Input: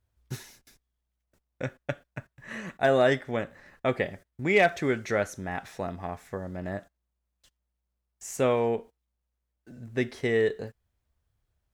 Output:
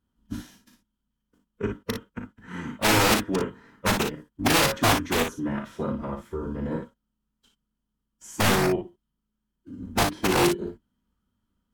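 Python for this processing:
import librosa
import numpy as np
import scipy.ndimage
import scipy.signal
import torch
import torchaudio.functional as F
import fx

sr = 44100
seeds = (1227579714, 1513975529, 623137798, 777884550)

p1 = fx.octave_divider(x, sr, octaves=1, level_db=-3.0)
p2 = fx.small_body(p1, sr, hz=(280.0, 1200.0, 3100.0), ring_ms=30, db=16)
p3 = (np.mod(10.0 ** (10.5 / 20.0) * p2 + 1.0, 2.0) - 1.0) / 10.0 ** (10.5 / 20.0)
p4 = fx.pitch_keep_formants(p3, sr, semitones=-4.0)
p5 = p4 + fx.room_early_taps(p4, sr, ms=(37, 57), db=(-8.5, -7.0), dry=0)
y = F.gain(torch.from_numpy(p5), -4.0).numpy()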